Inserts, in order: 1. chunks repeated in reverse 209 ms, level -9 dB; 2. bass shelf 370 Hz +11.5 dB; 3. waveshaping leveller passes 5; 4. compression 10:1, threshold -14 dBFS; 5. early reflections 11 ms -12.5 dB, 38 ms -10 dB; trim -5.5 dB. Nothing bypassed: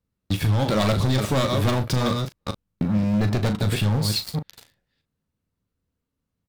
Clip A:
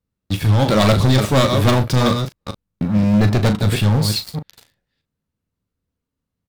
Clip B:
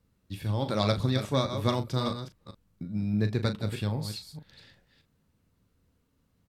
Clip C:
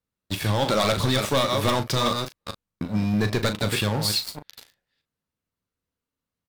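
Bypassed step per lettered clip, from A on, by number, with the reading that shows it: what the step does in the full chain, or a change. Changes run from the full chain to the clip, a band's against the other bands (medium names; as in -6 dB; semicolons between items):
4, mean gain reduction 5.5 dB; 3, crest factor change +10.0 dB; 2, 125 Hz band -8.0 dB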